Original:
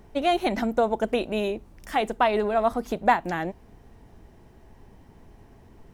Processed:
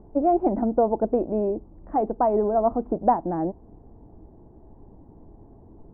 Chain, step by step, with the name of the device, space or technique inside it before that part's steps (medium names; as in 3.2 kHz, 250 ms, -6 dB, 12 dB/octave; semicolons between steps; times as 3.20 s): under water (low-pass 900 Hz 24 dB/octave; peaking EQ 310 Hz +7.5 dB 0.28 oct); trim +2 dB